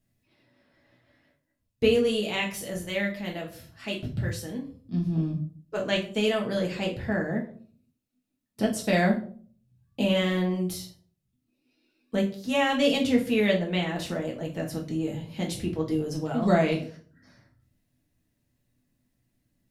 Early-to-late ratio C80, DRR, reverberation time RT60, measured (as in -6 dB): 15.0 dB, -1.5 dB, 0.50 s